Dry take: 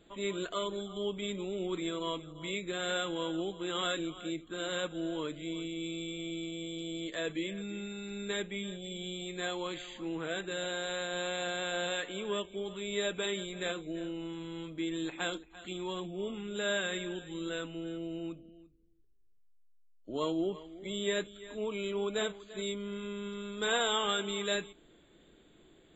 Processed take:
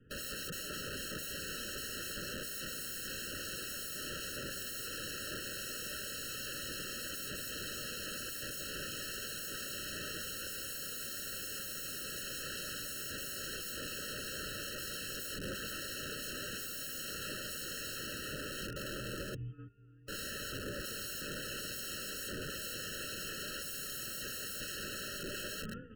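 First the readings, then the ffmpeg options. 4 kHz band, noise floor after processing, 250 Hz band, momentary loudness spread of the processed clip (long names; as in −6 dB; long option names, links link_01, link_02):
−2.5 dB, −43 dBFS, −11.0 dB, 1 LU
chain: -af "highpass=frequency=200:width_type=q:width=0.5412,highpass=frequency=200:width_type=q:width=1.307,lowpass=frequency=2500:width_type=q:width=0.5176,lowpass=frequency=2500:width_type=q:width=0.7071,lowpass=frequency=2500:width_type=q:width=1.932,afreqshift=-210,asuperstop=centerf=770:order=8:qfactor=1.5,alimiter=level_in=6dB:limit=-24dB:level=0:latency=1:release=243,volume=-6dB,aecho=1:1:1015|2030|3045:0.335|0.067|0.0134,aeval=exprs='(mod(158*val(0)+1,2)-1)/158':channel_layout=same,equalizer=frequency=1100:width_type=o:width=0.43:gain=-10.5,bandreject=frequency=50:width_type=h:width=6,bandreject=frequency=100:width_type=h:width=6,bandreject=frequency=150:width_type=h:width=6,bandreject=frequency=200:width_type=h:width=6,bandreject=frequency=250:width_type=h:width=6,bandreject=frequency=300:width_type=h:width=6,bandreject=frequency=350:width_type=h:width=6,bandreject=frequency=400:width_type=h:width=6,agate=range=-13dB:threshold=-59dB:ratio=16:detection=peak,acontrast=78,aeval=exprs='(mod(158*val(0)+1,2)-1)/158':channel_layout=same,afftfilt=real='re*eq(mod(floor(b*sr/1024/640),2),0)':imag='im*eq(mod(floor(b*sr/1024/640),2),0)':win_size=1024:overlap=0.75,volume=9.5dB"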